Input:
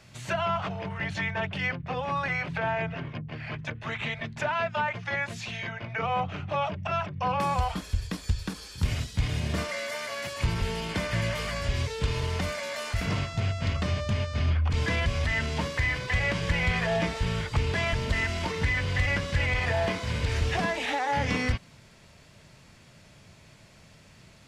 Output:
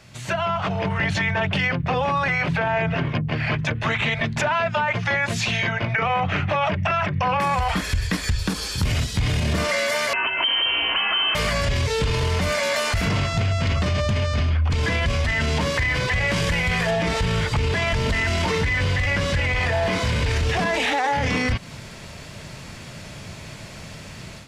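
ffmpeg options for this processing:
-filter_complex "[0:a]asettb=1/sr,asplit=3[a][b][c];[a]atrim=end=5.944[d];[b]atrim=start=5.94:end=8.37,asetpts=PTS-STARTPTS,afade=t=in:d=0.004:c=qsin,afade=t=out:st=2.426:d=0.004:c=qsin,equalizer=f=1.9k:t=o:w=0.76:g=8.5[e];[c]atrim=start=8.366[f];[d][e]acrossfade=d=0.004:c1=hsin:c2=qsin[g];[g][f]acrossfade=d=0.004:c1=qsin:c2=hsin,asettb=1/sr,asplit=3[h][i][j];[h]atrim=end=10.134[k];[i]atrim=start=10.13:end=11.35,asetpts=PTS-STARTPTS,afade=t=in:d=0.004:c=qsin,afade=t=out:st=1.216:d=0.004:c=qsin,lowpass=f=2.7k:t=q:w=0.5098,lowpass=f=2.7k:t=q:w=0.6013,lowpass=f=2.7k:t=q:w=0.9,lowpass=f=2.7k:t=q:w=2.563,afreqshift=-3200[l];[j]atrim=start=11.346[m];[k][l]acrossfade=d=0.004:c1=hsin:c2=qsin[n];[n][m]acrossfade=d=0.004:c1=qsin:c2=hsin,asettb=1/sr,asplit=3[o][p][q];[o]atrim=end=16.274[r];[p]atrim=start=16.27:end=16.91,asetpts=PTS-STARTPTS,afade=t=in:d=0.004:c=qsin,afade=t=out:st=0.636:d=0.004:c=qsin,highshelf=f=8.6k:g=12[s];[q]atrim=start=16.906[t];[r][s]acrossfade=d=0.004:c1=hsin:c2=qsin[u];[u][t]acrossfade=d=0.004:c1=qsin:c2=hsin,dynaudnorm=f=530:g=3:m=11dB,alimiter=limit=-14dB:level=0:latency=1:release=10,acompressor=threshold=-26dB:ratio=2.5,volume=5dB"

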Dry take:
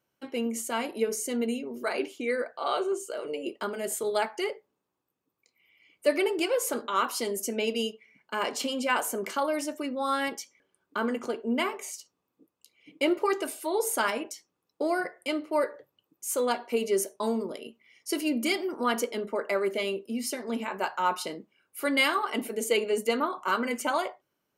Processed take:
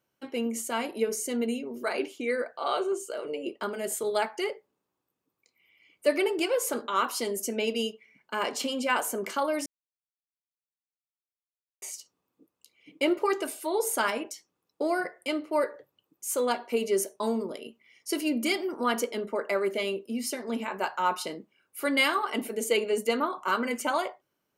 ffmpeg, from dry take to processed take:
-filter_complex "[0:a]asettb=1/sr,asplit=3[a][b][c];[a]atrim=end=3.214[d];[b]atrim=start=3.21:end=3.63,asetpts=PTS-STARTPTS,afade=t=in:d=0.004:c=qsin,afade=t=out:st=0.416:d=0.004:c=qsin,highshelf=f=5.6k:g=-6.5[e];[c]atrim=start=3.626[f];[d][e]acrossfade=d=0.004:c1=hsin:c2=qsin[g];[g][f]acrossfade=d=0.004:c1=qsin:c2=hsin,asplit=3[h][i][j];[h]atrim=end=9.66,asetpts=PTS-STARTPTS,afade=t=out:st=9.656:d=0.004:c=hsin[k];[i]atrim=start=9.66:end=11.82,asetpts=PTS-STARTPTS,volume=0[l];[j]atrim=start=11.82,asetpts=PTS-STARTPTS,afade=t=in:d=0.004:c=hsin[m];[k][l][m]concat=n=3:v=0:a=1"

